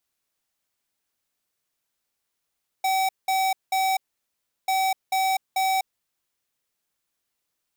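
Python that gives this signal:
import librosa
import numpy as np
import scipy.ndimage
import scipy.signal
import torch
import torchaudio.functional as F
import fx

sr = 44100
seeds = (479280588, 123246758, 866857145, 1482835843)

y = fx.beep_pattern(sr, wave='square', hz=763.0, on_s=0.25, off_s=0.19, beeps=3, pause_s=0.71, groups=2, level_db=-22.5)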